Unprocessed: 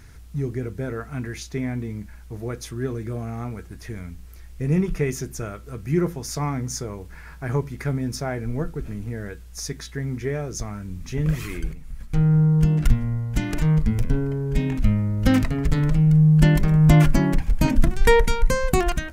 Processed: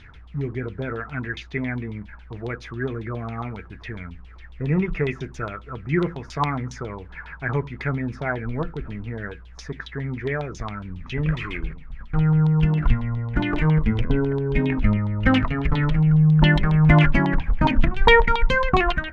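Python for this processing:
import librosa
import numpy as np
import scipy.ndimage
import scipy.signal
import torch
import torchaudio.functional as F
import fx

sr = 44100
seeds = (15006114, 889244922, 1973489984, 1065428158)

y = fx.peak_eq(x, sr, hz=370.0, db=6.5, octaves=1.2, at=(13.17, 14.97))
y = fx.filter_lfo_lowpass(y, sr, shape='saw_down', hz=7.3, low_hz=870.0, high_hz=3700.0, q=5.8)
y = y * librosa.db_to_amplitude(-1.0)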